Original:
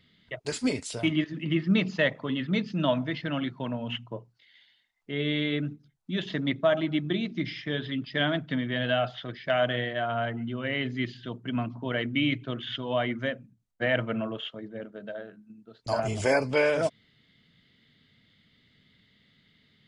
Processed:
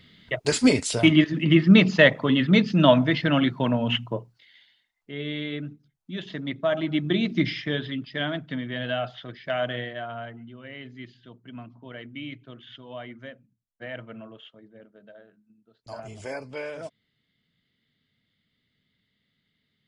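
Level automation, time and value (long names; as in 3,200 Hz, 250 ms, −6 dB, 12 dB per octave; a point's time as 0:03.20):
0:04.04 +9 dB
0:05.13 −3.5 dB
0:06.48 −3.5 dB
0:07.39 +8 dB
0:08.12 −2 dB
0:09.79 −2 dB
0:10.53 −11 dB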